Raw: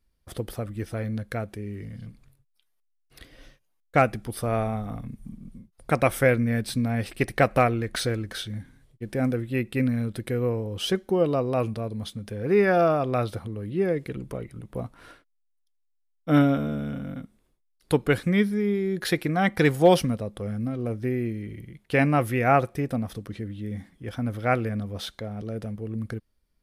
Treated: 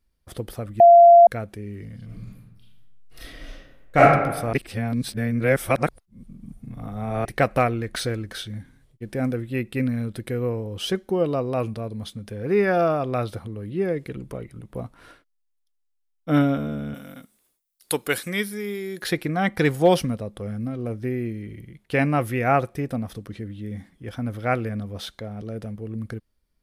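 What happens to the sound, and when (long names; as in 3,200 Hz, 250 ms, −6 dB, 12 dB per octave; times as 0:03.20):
0:00.80–0:01.27: beep over 688 Hz −6.5 dBFS
0:02.05–0:04.00: thrown reverb, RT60 1.1 s, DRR −8.5 dB
0:04.53–0:07.25: reverse
0:16.94–0:19.02: RIAA equalisation recording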